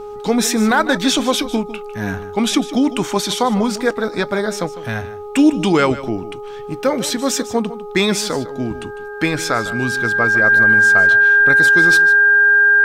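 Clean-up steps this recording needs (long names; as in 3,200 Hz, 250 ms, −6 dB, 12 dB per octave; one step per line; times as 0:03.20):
hum removal 415.2 Hz, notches 3
notch filter 1,600 Hz, Q 30
echo removal 152 ms −15 dB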